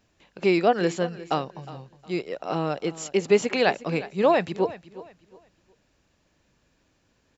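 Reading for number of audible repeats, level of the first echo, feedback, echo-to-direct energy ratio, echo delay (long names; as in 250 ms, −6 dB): 2, −17.0 dB, 28%, −16.5 dB, 361 ms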